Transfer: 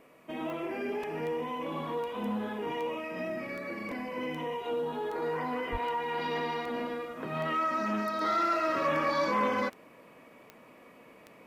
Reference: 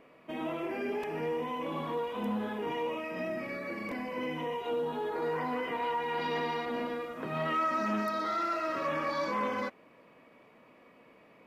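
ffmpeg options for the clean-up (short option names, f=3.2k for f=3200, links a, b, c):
-filter_complex "[0:a]adeclick=t=4,asplit=3[a][b][c];[a]afade=t=out:st=5.71:d=0.02[d];[b]highpass=f=140:w=0.5412,highpass=f=140:w=1.3066,afade=t=in:st=5.71:d=0.02,afade=t=out:st=5.83:d=0.02[e];[c]afade=t=in:st=5.83:d=0.02[f];[d][e][f]amix=inputs=3:normalize=0,agate=range=-21dB:threshold=-47dB,asetnsamples=n=441:p=0,asendcmd='8.21 volume volume -4dB',volume=0dB"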